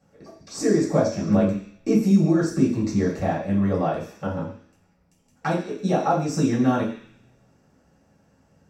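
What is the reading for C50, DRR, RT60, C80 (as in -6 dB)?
6.5 dB, -9.5 dB, 0.50 s, 9.5 dB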